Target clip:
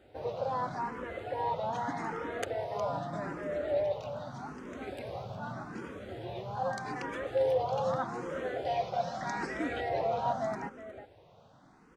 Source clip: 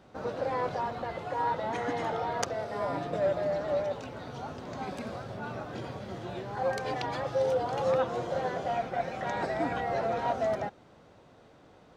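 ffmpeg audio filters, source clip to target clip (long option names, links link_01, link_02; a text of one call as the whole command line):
ffmpeg -i in.wav -filter_complex "[0:a]asetnsamples=nb_out_samples=441:pad=0,asendcmd='8.65 equalizer g 7.5;9.89 equalizer g -2',equalizer=frequency=5000:width_type=o:width=1:gain=-2.5,asplit=2[link_01][link_02];[link_02]adelay=361.5,volume=-10dB,highshelf=frequency=4000:gain=-8.13[link_03];[link_01][link_03]amix=inputs=2:normalize=0,asplit=2[link_04][link_05];[link_05]afreqshift=0.82[link_06];[link_04][link_06]amix=inputs=2:normalize=1" out.wav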